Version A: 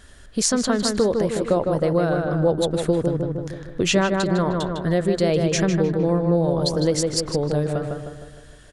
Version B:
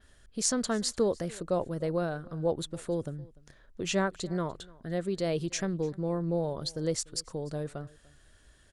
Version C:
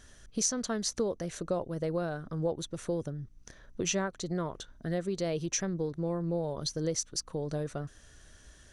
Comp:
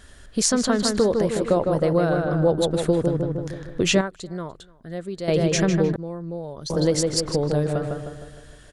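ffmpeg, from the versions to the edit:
ffmpeg -i take0.wav -i take1.wav -i take2.wav -filter_complex "[0:a]asplit=3[link_01][link_02][link_03];[link_01]atrim=end=4.012[link_04];[1:a]atrim=start=4.008:end=5.282[link_05];[link_02]atrim=start=5.278:end=5.962[link_06];[2:a]atrim=start=5.958:end=6.702[link_07];[link_03]atrim=start=6.698[link_08];[link_04][link_05]acrossfade=duration=0.004:curve1=hsin:curve2=hsin[link_09];[link_09][link_06]acrossfade=duration=0.004:curve1=hsin:curve2=hsin[link_10];[link_10][link_07]acrossfade=duration=0.004:curve1=hsin:curve2=hsin[link_11];[link_11][link_08]acrossfade=duration=0.004:curve1=hsin:curve2=hsin" out.wav

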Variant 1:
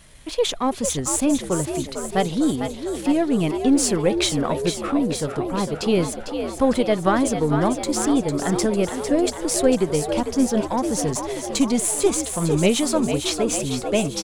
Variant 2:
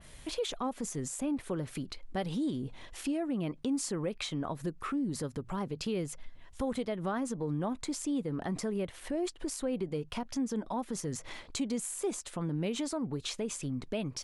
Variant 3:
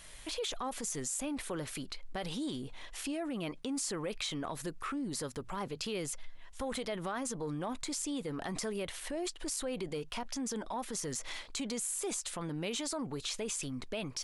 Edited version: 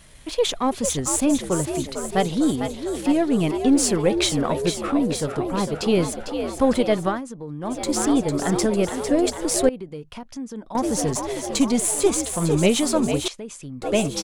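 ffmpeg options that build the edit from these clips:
ffmpeg -i take0.wav -i take1.wav -filter_complex "[1:a]asplit=3[link_01][link_02][link_03];[0:a]asplit=4[link_04][link_05][link_06][link_07];[link_04]atrim=end=7.22[link_08];[link_01]atrim=start=6.98:end=7.85[link_09];[link_05]atrim=start=7.61:end=9.692[link_10];[link_02]atrim=start=9.688:end=10.752[link_11];[link_06]atrim=start=10.748:end=13.282[link_12];[link_03]atrim=start=13.278:end=13.822[link_13];[link_07]atrim=start=13.818[link_14];[link_08][link_09]acrossfade=duration=0.24:curve1=tri:curve2=tri[link_15];[link_15][link_10]acrossfade=duration=0.24:curve1=tri:curve2=tri[link_16];[link_16][link_11]acrossfade=duration=0.004:curve1=hsin:curve2=hsin[link_17];[link_17][link_12]acrossfade=duration=0.004:curve1=hsin:curve2=hsin[link_18];[link_18][link_13]acrossfade=duration=0.004:curve1=hsin:curve2=hsin[link_19];[link_19][link_14]acrossfade=duration=0.004:curve1=hsin:curve2=hsin" out.wav

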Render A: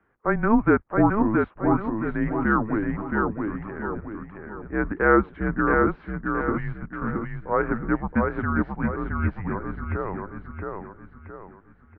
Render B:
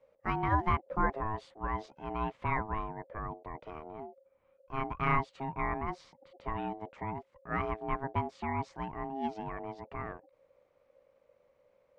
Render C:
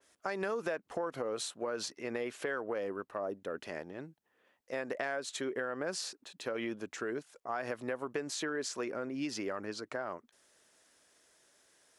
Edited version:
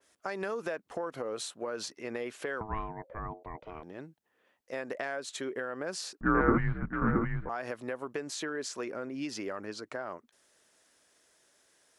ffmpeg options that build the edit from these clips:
ffmpeg -i take0.wav -i take1.wav -i take2.wav -filter_complex "[2:a]asplit=3[link_01][link_02][link_03];[link_01]atrim=end=2.612[link_04];[1:a]atrim=start=2.608:end=3.832[link_05];[link_02]atrim=start=3.828:end=6.212[link_06];[0:a]atrim=start=6.208:end=7.492[link_07];[link_03]atrim=start=7.488[link_08];[link_04][link_05]acrossfade=duration=0.004:curve1=hsin:curve2=hsin[link_09];[link_09][link_06]acrossfade=duration=0.004:curve1=hsin:curve2=hsin[link_10];[link_10][link_07]acrossfade=duration=0.004:curve1=hsin:curve2=hsin[link_11];[link_11][link_08]acrossfade=duration=0.004:curve1=hsin:curve2=hsin" out.wav

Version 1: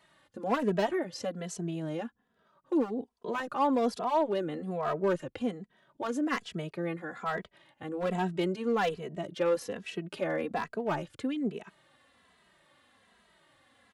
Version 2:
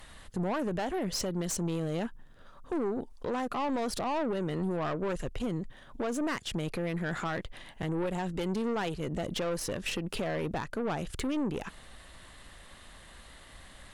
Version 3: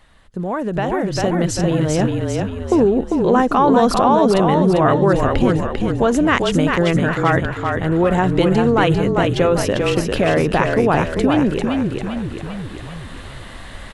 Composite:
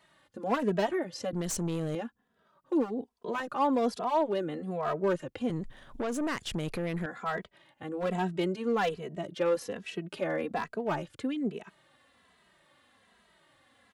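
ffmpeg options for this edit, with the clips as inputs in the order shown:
ffmpeg -i take0.wav -i take1.wav -filter_complex "[1:a]asplit=2[link_01][link_02];[0:a]asplit=3[link_03][link_04][link_05];[link_03]atrim=end=1.332[link_06];[link_01]atrim=start=1.328:end=1.952[link_07];[link_04]atrim=start=1.948:end=5.502[link_08];[link_02]atrim=start=5.498:end=7.062[link_09];[link_05]atrim=start=7.058[link_10];[link_06][link_07]acrossfade=duration=0.004:curve1=hsin:curve2=hsin[link_11];[link_11][link_08]acrossfade=duration=0.004:curve1=hsin:curve2=hsin[link_12];[link_12][link_09]acrossfade=duration=0.004:curve1=hsin:curve2=hsin[link_13];[link_13][link_10]acrossfade=duration=0.004:curve1=hsin:curve2=hsin" out.wav

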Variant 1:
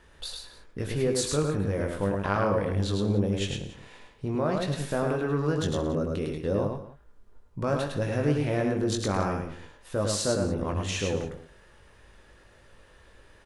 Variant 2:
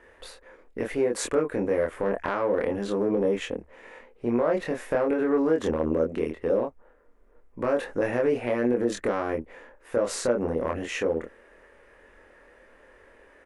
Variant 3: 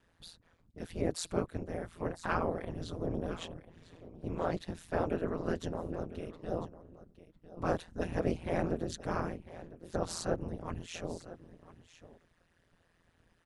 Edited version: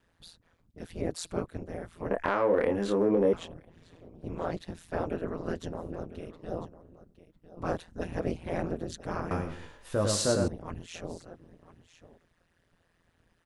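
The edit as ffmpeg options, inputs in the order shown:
ffmpeg -i take0.wav -i take1.wav -i take2.wav -filter_complex "[2:a]asplit=3[link_01][link_02][link_03];[link_01]atrim=end=2.112[link_04];[1:a]atrim=start=2.108:end=3.332[link_05];[link_02]atrim=start=3.328:end=9.312[link_06];[0:a]atrim=start=9.308:end=10.482[link_07];[link_03]atrim=start=10.478[link_08];[link_04][link_05]acrossfade=duration=0.004:curve1=hsin:curve2=hsin[link_09];[link_09][link_06]acrossfade=duration=0.004:curve1=hsin:curve2=hsin[link_10];[link_10][link_07]acrossfade=duration=0.004:curve1=hsin:curve2=hsin[link_11];[link_11][link_08]acrossfade=duration=0.004:curve1=hsin:curve2=hsin" out.wav

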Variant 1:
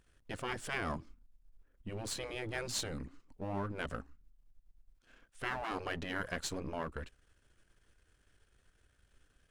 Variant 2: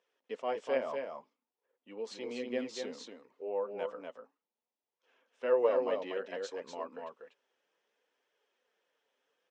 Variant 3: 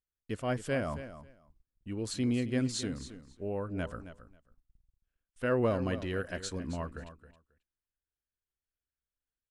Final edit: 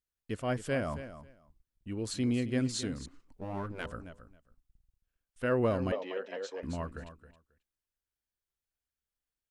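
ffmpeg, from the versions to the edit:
ffmpeg -i take0.wav -i take1.wav -i take2.wav -filter_complex "[2:a]asplit=3[link_01][link_02][link_03];[link_01]atrim=end=3.062[link_04];[0:a]atrim=start=3.058:end=3.862[link_05];[link_02]atrim=start=3.858:end=5.922[link_06];[1:a]atrim=start=5.918:end=6.632[link_07];[link_03]atrim=start=6.628[link_08];[link_04][link_05]acrossfade=duration=0.004:curve1=hsin:curve2=hsin[link_09];[link_09][link_06]acrossfade=duration=0.004:curve1=hsin:curve2=hsin[link_10];[link_10][link_07]acrossfade=duration=0.004:curve1=hsin:curve2=hsin[link_11];[link_11][link_08]acrossfade=duration=0.004:curve1=hsin:curve2=hsin" out.wav

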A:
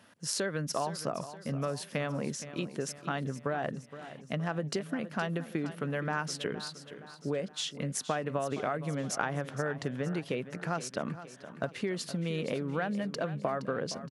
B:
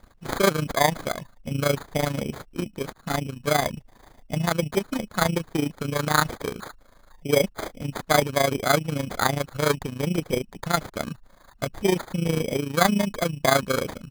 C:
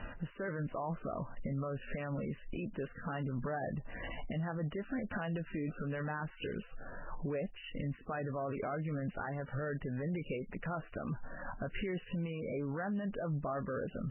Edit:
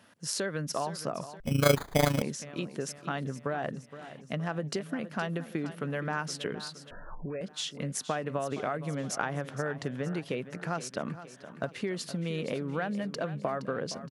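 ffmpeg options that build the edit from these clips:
ffmpeg -i take0.wav -i take1.wav -i take2.wav -filter_complex "[0:a]asplit=3[link_01][link_02][link_03];[link_01]atrim=end=1.402[link_04];[1:a]atrim=start=1.398:end=2.222[link_05];[link_02]atrim=start=2.218:end=6.912[link_06];[2:a]atrim=start=6.908:end=7.412[link_07];[link_03]atrim=start=7.408[link_08];[link_04][link_05]acrossfade=duration=0.004:curve1=hsin:curve2=hsin[link_09];[link_09][link_06]acrossfade=duration=0.004:curve1=hsin:curve2=hsin[link_10];[link_10][link_07]acrossfade=duration=0.004:curve1=hsin:curve2=hsin[link_11];[link_11][link_08]acrossfade=duration=0.004:curve1=hsin:curve2=hsin" out.wav

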